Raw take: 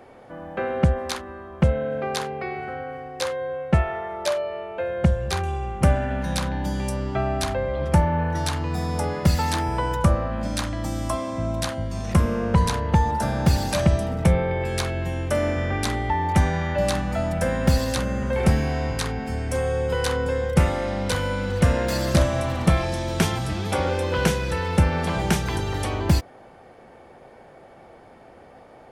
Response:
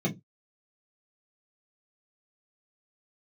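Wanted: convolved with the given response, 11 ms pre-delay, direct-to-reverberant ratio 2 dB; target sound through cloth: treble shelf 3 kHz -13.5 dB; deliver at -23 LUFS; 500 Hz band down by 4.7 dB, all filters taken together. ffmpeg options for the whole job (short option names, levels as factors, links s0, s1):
-filter_complex "[0:a]equalizer=f=500:t=o:g=-5,asplit=2[s0][s1];[1:a]atrim=start_sample=2205,adelay=11[s2];[s1][s2]afir=irnorm=-1:irlink=0,volume=0.335[s3];[s0][s3]amix=inputs=2:normalize=0,highshelf=f=3000:g=-13.5,volume=0.422"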